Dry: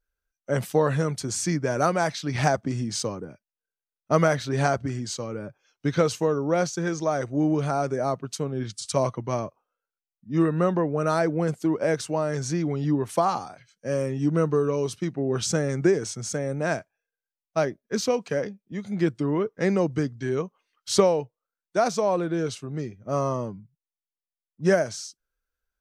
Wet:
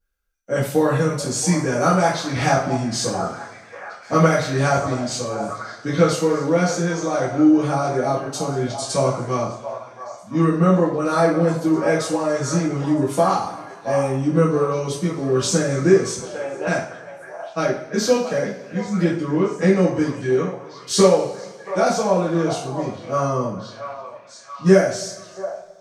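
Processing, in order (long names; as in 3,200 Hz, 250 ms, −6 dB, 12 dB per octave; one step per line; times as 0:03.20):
0:16.18–0:16.67: loudspeaker in its box 480–3,400 Hz, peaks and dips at 880 Hz +5 dB, 1,900 Hz −7 dB, 2,900 Hz +8 dB
echo through a band-pass that steps 679 ms, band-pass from 820 Hz, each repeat 0.7 octaves, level −7.5 dB
coupled-rooms reverb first 0.43 s, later 1.9 s, from −19 dB, DRR −8.5 dB
level −3.5 dB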